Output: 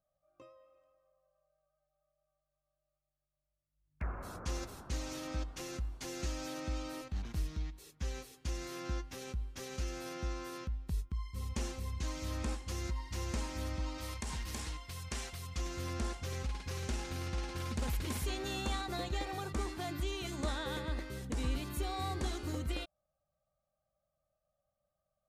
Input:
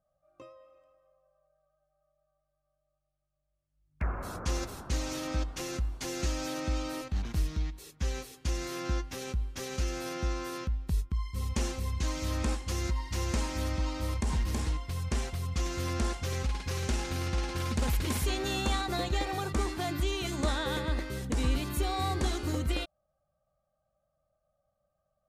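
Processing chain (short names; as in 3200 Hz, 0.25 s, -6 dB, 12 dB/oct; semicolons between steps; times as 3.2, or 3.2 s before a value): 13.98–15.57 tilt shelf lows -5 dB, about 910 Hz; gain -6.5 dB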